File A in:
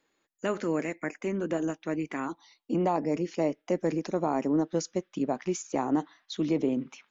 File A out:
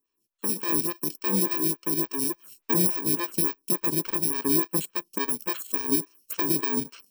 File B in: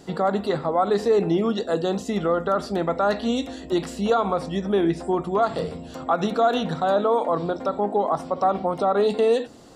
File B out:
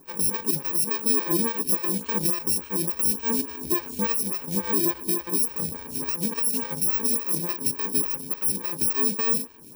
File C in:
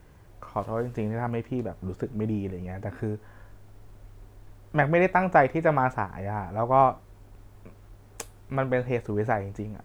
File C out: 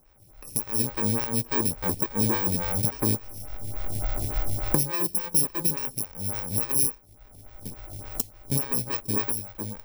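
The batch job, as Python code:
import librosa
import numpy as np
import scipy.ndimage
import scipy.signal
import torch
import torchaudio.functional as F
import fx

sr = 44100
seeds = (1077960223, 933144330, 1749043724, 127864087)

y = fx.bit_reversed(x, sr, seeds[0], block=64)
y = fx.recorder_agc(y, sr, target_db=-10.5, rise_db_per_s=18.0, max_gain_db=30)
y = fx.stagger_phaser(y, sr, hz=3.5)
y = y * 10.0 ** (-3.5 / 20.0)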